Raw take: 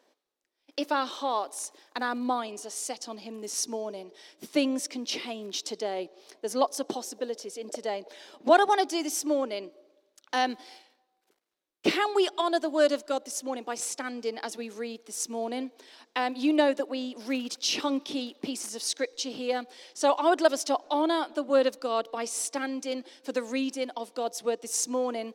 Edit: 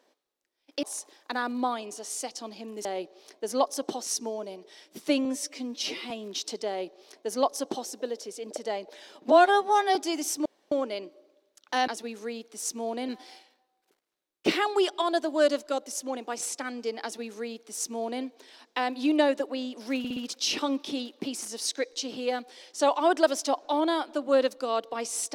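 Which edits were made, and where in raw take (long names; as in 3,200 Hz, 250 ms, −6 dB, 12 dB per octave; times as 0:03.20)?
0:00.83–0:01.49: remove
0:04.72–0:05.29: time-stretch 1.5×
0:05.86–0:07.05: duplicate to 0:03.51
0:08.50–0:08.82: time-stretch 2×
0:09.32: splice in room tone 0.26 s
0:14.42–0:15.63: duplicate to 0:10.48
0:17.38: stutter 0.06 s, 4 plays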